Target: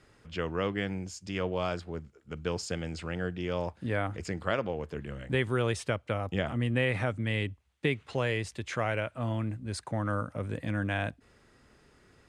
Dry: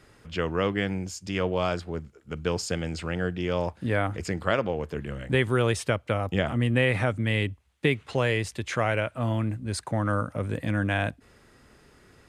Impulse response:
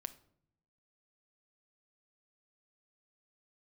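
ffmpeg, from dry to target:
-af "lowpass=10000,volume=-5dB"

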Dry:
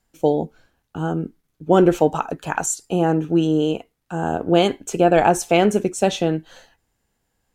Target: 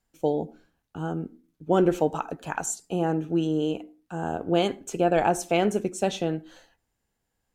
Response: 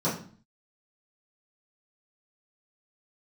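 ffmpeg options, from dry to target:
-filter_complex "[0:a]asplit=2[link_01][link_02];[1:a]atrim=start_sample=2205,asetrate=61740,aresample=44100,adelay=73[link_03];[link_02][link_03]afir=irnorm=-1:irlink=0,volume=-34.5dB[link_04];[link_01][link_04]amix=inputs=2:normalize=0,volume=-7dB"

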